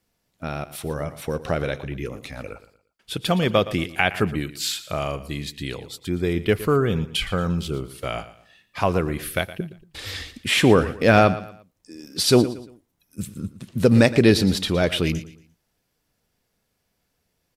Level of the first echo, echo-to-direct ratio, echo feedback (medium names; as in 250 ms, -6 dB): -15.5 dB, -15.0 dB, 33%